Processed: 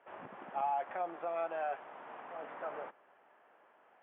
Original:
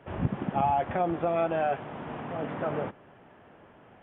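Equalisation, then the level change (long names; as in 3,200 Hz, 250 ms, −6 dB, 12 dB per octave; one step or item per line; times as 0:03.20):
high-pass filter 720 Hz 12 dB per octave
high-frequency loss of the air 440 metres
−4.0 dB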